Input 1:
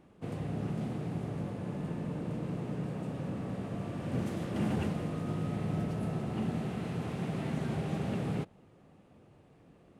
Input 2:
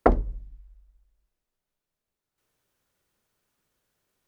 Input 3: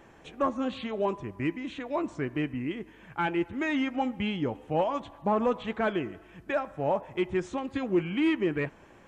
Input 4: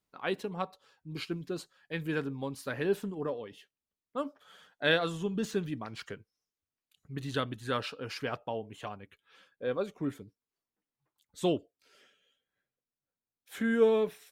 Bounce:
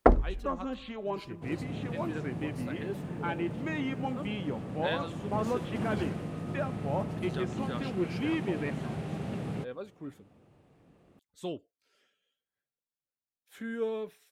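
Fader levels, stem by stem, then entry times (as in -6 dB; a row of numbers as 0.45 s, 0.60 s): -2.0 dB, -1.0 dB, -6.0 dB, -8.5 dB; 1.20 s, 0.00 s, 0.05 s, 0.00 s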